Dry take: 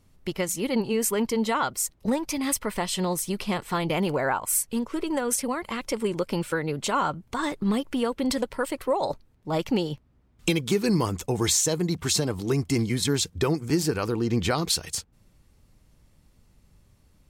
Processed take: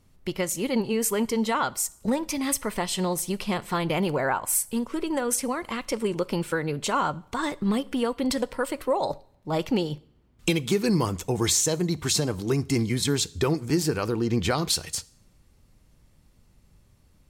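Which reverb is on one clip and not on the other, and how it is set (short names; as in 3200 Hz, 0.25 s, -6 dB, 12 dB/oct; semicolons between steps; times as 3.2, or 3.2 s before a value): two-slope reverb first 0.53 s, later 1.7 s, from -24 dB, DRR 17.5 dB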